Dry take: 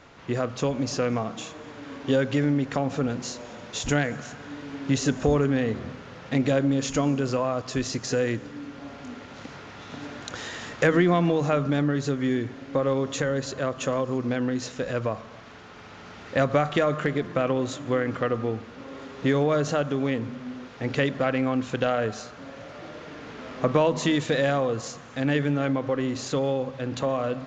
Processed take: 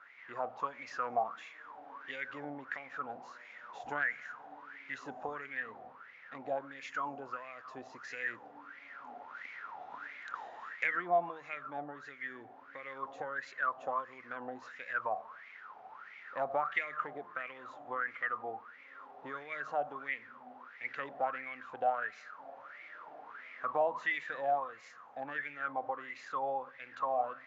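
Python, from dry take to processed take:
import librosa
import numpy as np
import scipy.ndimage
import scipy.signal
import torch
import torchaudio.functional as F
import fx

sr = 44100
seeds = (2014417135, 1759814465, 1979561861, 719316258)

y = fx.rider(x, sr, range_db=4, speed_s=2.0)
y = fx.wah_lfo(y, sr, hz=1.5, low_hz=730.0, high_hz=2200.0, q=12.0)
y = F.gain(torch.from_numpy(y), 5.5).numpy()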